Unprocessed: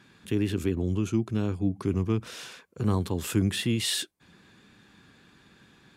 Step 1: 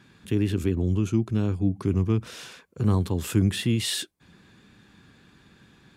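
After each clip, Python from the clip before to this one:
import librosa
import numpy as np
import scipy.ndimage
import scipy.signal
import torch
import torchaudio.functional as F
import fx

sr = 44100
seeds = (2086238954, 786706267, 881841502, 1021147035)

y = fx.low_shelf(x, sr, hz=190.0, db=6.0)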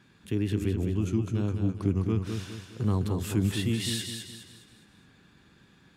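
y = fx.echo_feedback(x, sr, ms=207, feedback_pct=41, wet_db=-6.0)
y = y * librosa.db_to_amplitude(-4.5)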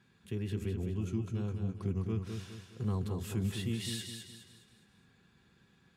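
y = fx.notch_comb(x, sr, f0_hz=300.0)
y = y * librosa.db_to_amplitude(-6.5)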